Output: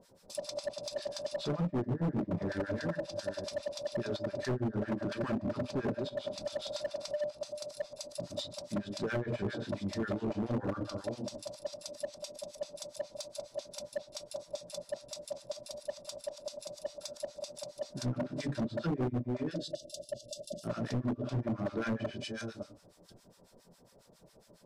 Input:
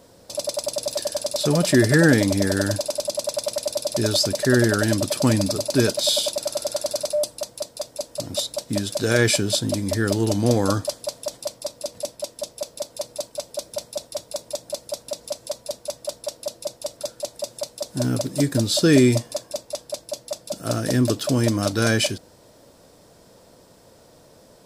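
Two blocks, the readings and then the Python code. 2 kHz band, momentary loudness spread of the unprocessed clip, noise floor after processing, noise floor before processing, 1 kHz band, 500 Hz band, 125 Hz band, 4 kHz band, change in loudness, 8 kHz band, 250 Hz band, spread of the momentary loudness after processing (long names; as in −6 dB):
−18.0 dB, 14 LU, −63 dBFS, −52 dBFS, −11.5 dB, −13.0 dB, −14.0 dB, −18.5 dB, −14.5 dB, −21.0 dB, −13.5 dB, 9 LU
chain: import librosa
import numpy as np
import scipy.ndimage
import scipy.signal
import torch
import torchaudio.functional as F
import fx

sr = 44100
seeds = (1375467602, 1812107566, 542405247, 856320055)

y = fx.reverse_delay(x, sr, ms=492, wet_db=-10)
y = fx.spec_erase(y, sr, start_s=19.52, length_s=1.12, low_hz=710.0, high_hz=2700.0)
y = fx.room_shoebox(y, sr, seeds[0], volume_m3=480.0, walls='furnished', distance_m=1.2)
y = fx.harmonic_tremolo(y, sr, hz=7.3, depth_pct=100, crossover_hz=990.0)
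y = fx.env_lowpass_down(y, sr, base_hz=320.0, full_db=-15.0)
y = np.clip(10.0 ** (20.5 / 20.0) * y, -1.0, 1.0) / 10.0 ** (20.5 / 20.0)
y = F.gain(torch.from_numpy(y), -8.0).numpy()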